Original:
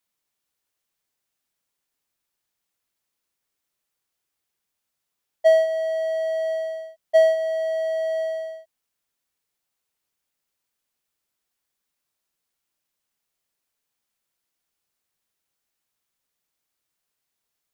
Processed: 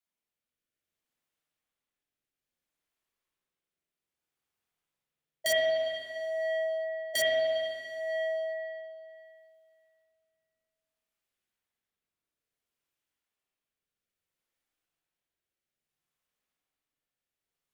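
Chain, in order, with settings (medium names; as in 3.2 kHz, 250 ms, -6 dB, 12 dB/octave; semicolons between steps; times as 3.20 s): integer overflow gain 9.5 dB; rotary cabinet horn 0.6 Hz; spring tank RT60 2.4 s, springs 46/59 ms, chirp 75 ms, DRR -5 dB; trim -8 dB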